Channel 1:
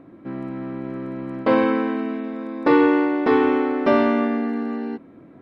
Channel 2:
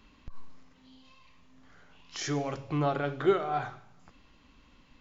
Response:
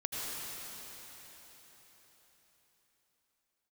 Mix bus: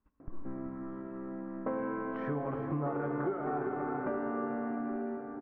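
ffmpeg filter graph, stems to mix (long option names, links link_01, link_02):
-filter_complex "[0:a]acompressor=threshold=-34dB:ratio=1.5,adelay=200,volume=-11.5dB,asplit=2[link_01][link_02];[link_02]volume=-3dB[link_03];[1:a]agate=range=-22dB:threshold=-55dB:ratio=16:detection=peak,volume=-3dB,asplit=3[link_04][link_05][link_06];[link_05]volume=-7.5dB[link_07];[link_06]volume=-8dB[link_08];[2:a]atrim=start_sample=2205[link_09];[link_03][link_07]amix=inputs=2:normalize=0[link_10];[link_10][link_09]afir=irnorm=-1:irlink=0[link_11];[link_08]aecho=0:1:384:1[link_12];[link_01][link_04][link_11][link_12]amix=inputs=4:normalize=0,lowpass=frequency=1600:width=0.5412,lowpass=frequency=1600:width=1.3066,acompressor=threshold=-30dB:ratio=10"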